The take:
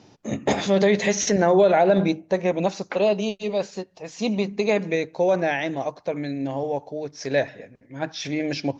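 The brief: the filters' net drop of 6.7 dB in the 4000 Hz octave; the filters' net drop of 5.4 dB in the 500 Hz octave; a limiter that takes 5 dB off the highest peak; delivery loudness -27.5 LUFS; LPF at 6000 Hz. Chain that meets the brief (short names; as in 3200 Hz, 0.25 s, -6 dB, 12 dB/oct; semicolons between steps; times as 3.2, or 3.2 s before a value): LPF 6000 Hz; bell 500 Hz -7 dB; bell 4000 Hz -7.5 dB; gain +1 dB; limiter -15 dBFS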